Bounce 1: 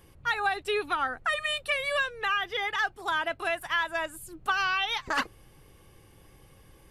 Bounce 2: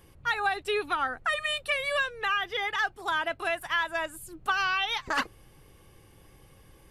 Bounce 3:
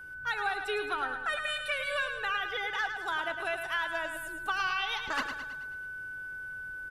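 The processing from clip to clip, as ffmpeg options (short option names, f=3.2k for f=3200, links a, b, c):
-af anull
-filter_complex "[0:a]aeval=exprs='val(0)+0.0126*sin(2*PI*1500*n/s)':c=same,asplit=2[a][b];[b]aecho=0:1:108|216|324|432|540|648:0.398|0.207|0.108|0.056|0.0291|0.0151[c];[a][c]amix=inputs=2:normalize=0,volume=-5dB"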